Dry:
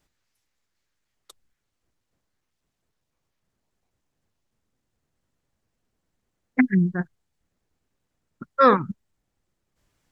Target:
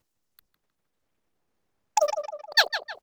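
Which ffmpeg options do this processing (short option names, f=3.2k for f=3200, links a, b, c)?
-filter_complex "[0:a]asetrate=147294,aresample=44100,acrusher=bits=7:mode=log:mix=0:aa=0.000001,asplit=2[a][b];[b]adelay=155,lowpass=f=2.7k:p=1,volume=-8dB,asplit=2[c][d];[d]adelay=155,lowpass=f=2.7k:p=1,volume=0.47,asplit=2[e][f];[f]adelay=155,lowpass=f=2.7k:p=1,volume=0.47,asplit=2[g][h];[h]adelay=155,lowpass=f=2.7k:p=1,volume=0.47,asplit=2[i][j];[j]adelay=155,lowpass=f=2.7k:p=1,volume=0.47[k];[a][c][e][g][i][k]amix=inputs=6:normalize=0,volume=-1.5dB"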